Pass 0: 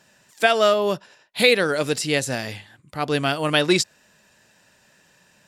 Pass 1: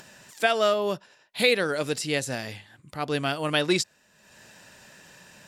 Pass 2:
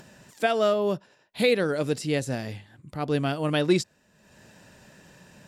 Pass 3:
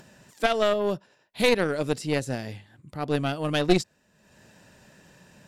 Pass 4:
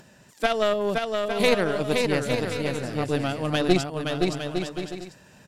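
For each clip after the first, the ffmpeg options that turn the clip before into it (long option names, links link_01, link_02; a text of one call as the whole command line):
ffmpeg -i in.wav -af "acompressor=mode=upward:threshold=-34dB:ratio=2.5,volume=-5dB" out.wav
ffmpeg -i in.wav -af "tiltshelf=frequency=640:gain=5.5" out.wav
ffmpeg -i in.wav -af "aeval=exprs='0.335*(cos(1*acos(clip(val(0)/0.335,-1,1)))-cos(1*PI/2))+0.106*(cos(4*acos(clip(val(0)/0.335,-1,1)))-cos(4*PI/2))+0.0422*(cos(6*acos(clip(val(0)/0.335,-1,1)))-cos(6*PI/2))+0.00944*(cos(7*acos(clip(val(0)/0.335,-1,1)))-cos(7*PI/2))':channel_layout=same" out.wav
ffmpeg -i in.wav -af "aecho=1:1:520|858|1078|1221|1313:0.631|0.398|0.251|0.158|0.1" out.wav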